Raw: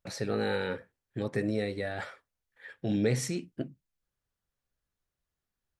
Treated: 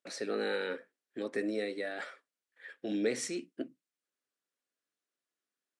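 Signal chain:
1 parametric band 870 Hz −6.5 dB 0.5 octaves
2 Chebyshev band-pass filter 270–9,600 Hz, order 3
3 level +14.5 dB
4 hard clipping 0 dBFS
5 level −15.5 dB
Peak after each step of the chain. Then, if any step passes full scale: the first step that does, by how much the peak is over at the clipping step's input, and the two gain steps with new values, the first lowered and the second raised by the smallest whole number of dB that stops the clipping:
−15.0, −17.5, −3.0, −3.0, −18.5 dBFS
no step passes full scale

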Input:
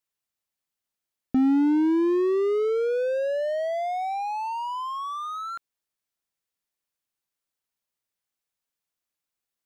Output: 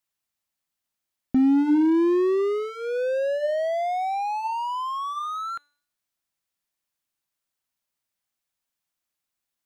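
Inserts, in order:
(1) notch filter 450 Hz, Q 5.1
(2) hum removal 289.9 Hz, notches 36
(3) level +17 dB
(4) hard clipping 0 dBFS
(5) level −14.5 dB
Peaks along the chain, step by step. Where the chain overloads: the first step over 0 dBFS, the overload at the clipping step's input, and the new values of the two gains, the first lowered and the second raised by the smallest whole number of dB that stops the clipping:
−14.5, −13.5, +3.5, 0.0, −14.5 dBFS
step 3, 3.5 dB
step 3 +13 dB, step 5 −10.5 dB

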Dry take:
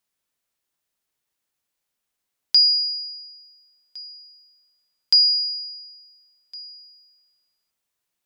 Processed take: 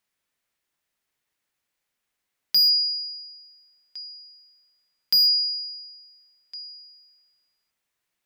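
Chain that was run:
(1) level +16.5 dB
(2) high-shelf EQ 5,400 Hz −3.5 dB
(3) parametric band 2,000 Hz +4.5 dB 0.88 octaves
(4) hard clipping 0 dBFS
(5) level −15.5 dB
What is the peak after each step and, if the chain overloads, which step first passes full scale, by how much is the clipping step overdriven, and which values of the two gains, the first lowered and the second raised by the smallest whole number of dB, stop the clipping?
+8.0, +6.5, +7.5, 0.0, −15.5 dBFS
step 1, 7.5 dB
step 1 +8.5 dB, step 5 −7.5 dB

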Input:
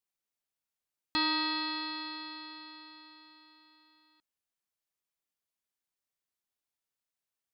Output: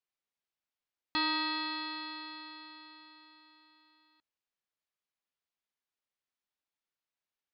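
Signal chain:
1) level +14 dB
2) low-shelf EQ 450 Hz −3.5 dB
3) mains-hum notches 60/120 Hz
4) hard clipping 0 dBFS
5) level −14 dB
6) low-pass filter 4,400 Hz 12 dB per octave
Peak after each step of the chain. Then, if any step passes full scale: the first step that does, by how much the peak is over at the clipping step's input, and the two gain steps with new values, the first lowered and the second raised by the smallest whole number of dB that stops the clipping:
−4.0, −4.5, −4.5, −4.5, −18.5, −19.5 dBFS
no step passes full scale

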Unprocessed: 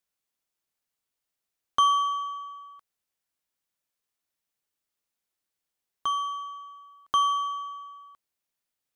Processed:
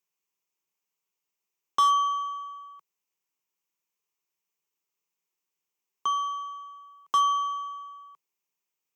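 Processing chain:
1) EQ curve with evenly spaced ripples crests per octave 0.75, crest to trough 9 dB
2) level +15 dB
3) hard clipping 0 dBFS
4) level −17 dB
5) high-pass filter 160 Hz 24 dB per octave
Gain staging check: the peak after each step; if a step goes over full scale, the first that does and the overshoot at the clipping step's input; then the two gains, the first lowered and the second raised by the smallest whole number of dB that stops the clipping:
−9.5, +5.5, 0.0, −17.0, −14.5 dBFS
step 2, 5.5 dB
step 2 +9 dB, step 4 −11 dB

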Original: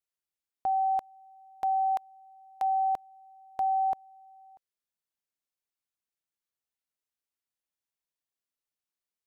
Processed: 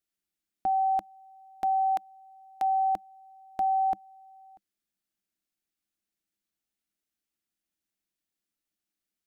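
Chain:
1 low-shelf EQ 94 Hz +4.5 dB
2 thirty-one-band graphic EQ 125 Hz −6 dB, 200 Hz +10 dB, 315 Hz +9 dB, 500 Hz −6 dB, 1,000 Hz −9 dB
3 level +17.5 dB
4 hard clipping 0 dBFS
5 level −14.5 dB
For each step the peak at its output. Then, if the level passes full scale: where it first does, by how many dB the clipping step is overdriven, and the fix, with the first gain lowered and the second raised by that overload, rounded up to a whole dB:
−22.5, −23.5, −6.0, −6.0, −20.5 dBFS
no step passes full scale

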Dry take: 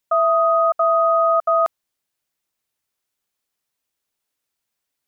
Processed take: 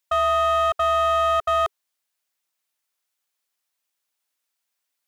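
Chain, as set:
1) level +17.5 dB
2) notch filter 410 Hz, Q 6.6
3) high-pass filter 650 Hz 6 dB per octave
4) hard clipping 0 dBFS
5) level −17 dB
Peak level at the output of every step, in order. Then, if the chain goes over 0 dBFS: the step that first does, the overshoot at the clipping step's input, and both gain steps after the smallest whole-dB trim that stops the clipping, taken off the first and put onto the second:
+7.5, +7.5, +5.5, 0.0, −17.0 dBFS
step 1, 5.5 dB
step 1 +11.5 dB, step 5 −11 dB

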